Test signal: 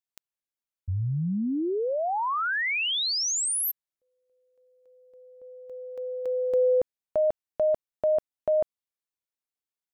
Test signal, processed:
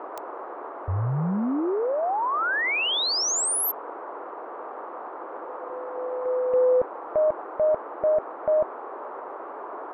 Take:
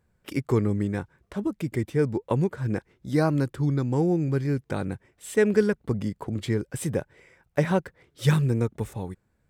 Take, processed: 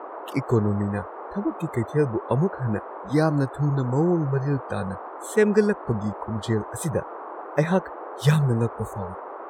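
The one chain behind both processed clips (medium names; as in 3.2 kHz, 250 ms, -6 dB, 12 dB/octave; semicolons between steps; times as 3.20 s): spectral noise reduction 29 dB; band noise 330–1200 Hz -39 dBFS; trim +2 dB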